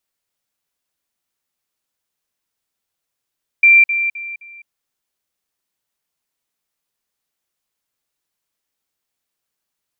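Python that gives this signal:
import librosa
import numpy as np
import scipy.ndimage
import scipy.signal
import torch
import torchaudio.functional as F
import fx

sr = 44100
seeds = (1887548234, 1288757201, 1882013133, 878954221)

y = fx.level_ladder(sr, hz=2360.0, from_db=-5.5, step_db=-10.0, steps=4, dwell_s=0.21, gap_s=0.05)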